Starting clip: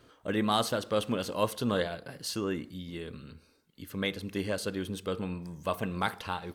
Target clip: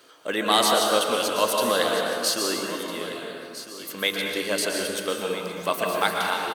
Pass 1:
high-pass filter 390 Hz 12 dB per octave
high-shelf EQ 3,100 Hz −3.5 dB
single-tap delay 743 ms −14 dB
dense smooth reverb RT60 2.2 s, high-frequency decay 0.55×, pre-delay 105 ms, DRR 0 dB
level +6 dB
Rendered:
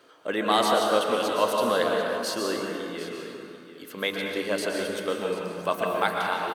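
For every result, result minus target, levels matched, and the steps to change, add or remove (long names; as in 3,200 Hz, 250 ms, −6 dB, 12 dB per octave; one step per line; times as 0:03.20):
echo 562 ms early; 8,000 Hz band −7.0 dB
change: single-tap delay 1,305 ms −14 dB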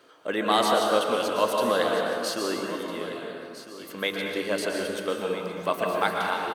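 8,000 Hz band −7.0 dB
change: high-shelf EQ 3,100 Hz +7.5 dB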